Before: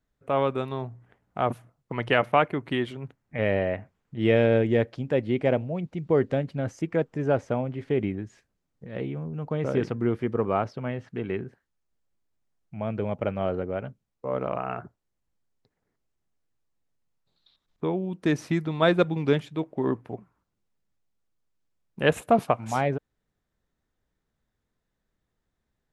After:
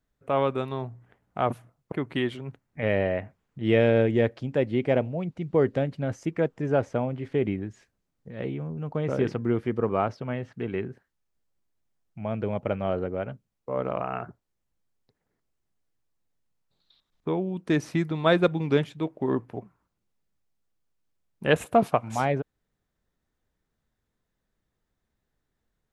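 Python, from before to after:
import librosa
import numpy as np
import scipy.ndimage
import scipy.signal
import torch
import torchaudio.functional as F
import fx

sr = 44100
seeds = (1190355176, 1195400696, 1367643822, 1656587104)

y = fx.edit(x, sr, fx.cut(start_s=1.92, length_s=0.56), tone=tone)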